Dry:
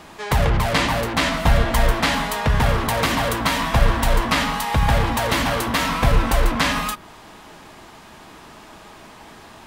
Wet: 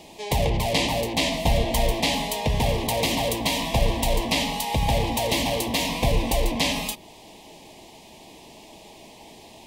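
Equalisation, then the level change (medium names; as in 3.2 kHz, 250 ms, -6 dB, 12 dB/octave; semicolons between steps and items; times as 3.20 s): Butterworth band-stop 1.4 kHz, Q 0.95; bass shelf 220 Hz -6.5 dB; 0.0 dB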